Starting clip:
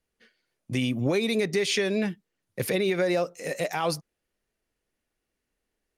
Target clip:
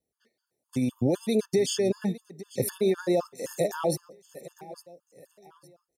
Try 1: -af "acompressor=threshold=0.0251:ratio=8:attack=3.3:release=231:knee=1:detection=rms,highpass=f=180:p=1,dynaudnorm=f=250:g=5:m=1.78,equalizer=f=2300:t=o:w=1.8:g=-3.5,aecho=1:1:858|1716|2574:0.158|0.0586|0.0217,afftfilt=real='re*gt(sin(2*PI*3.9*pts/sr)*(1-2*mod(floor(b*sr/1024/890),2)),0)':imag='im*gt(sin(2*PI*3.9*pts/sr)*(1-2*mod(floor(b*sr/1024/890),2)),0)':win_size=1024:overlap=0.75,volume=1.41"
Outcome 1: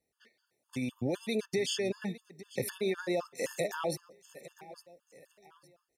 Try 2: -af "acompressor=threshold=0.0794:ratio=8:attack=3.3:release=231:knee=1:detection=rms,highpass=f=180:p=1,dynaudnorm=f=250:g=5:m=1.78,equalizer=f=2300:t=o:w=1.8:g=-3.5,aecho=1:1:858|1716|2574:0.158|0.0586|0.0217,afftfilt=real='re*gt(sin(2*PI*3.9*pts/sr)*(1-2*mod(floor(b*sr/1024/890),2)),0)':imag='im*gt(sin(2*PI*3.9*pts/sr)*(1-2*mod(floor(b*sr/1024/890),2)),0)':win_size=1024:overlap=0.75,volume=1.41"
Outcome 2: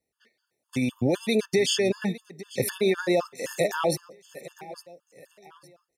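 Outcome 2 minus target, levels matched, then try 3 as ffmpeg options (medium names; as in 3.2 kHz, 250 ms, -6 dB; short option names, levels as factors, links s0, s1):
2 kHz band +8.0 dB
-af "acompressor=threshold=0.0794:ratio=8:attack=3.3:release=231:knee=1:detection=rms,highpass=f=180:p=1,dynaudnorm=f=250:g=5:m=1.78,equalizer=f=2300:t=o:w=1.8:g=-15,aecho=1:1:858|1716|2574:0.158|0.0586|0.0217,afftfilt=real='re*gt(sin(2*PI*3.9*pts/sr)*(1-2*mod(floor(b*sr/1024/890),2)),0)':imag='im*gt(sin(2*PI*3.9*pts/sr)*(1-2*mod(floor(b*sr/1024/890),2)),0)':win_size=1024:overlap=0.75,volume=1.41"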